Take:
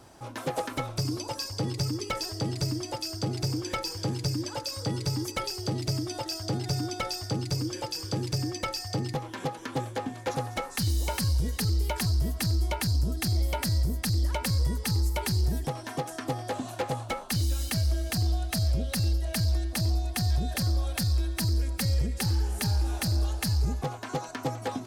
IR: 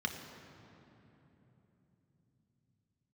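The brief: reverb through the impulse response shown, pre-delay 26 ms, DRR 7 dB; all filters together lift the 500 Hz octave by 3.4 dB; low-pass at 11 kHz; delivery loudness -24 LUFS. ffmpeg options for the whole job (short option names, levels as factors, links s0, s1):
-filter_complex "[0:a]lowpass=11000,equalizer=f=500:t=o:g=4,asplit=2[s0][s1];[1:a]atrim=start_sample=2205,adelay=26[s2];[s1][s2]afir=irnorm=-1:irlink=0,volume=0.282[s3];[s0][s3]amix=inputs=2:normalize=0,volume=1.58"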